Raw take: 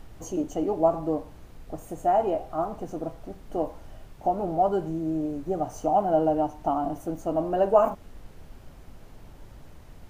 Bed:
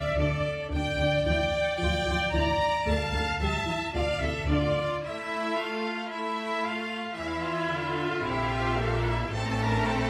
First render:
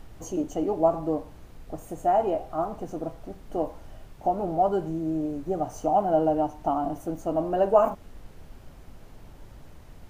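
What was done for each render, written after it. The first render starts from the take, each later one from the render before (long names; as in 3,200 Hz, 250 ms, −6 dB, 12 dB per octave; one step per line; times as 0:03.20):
no processing that can be heard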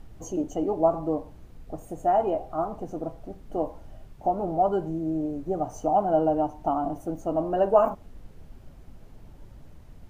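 broadband denoise 6 dB, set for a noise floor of −48 dBFS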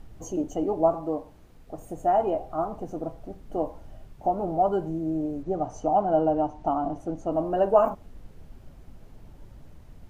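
0:00.93–0:01.78: low-shelf EQ 220 Hz −7.5 dB
0:05.43–0:07.32: low-pass filter 6,600 Hz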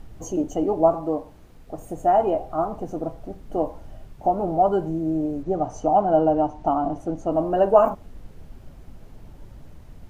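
level +4 dB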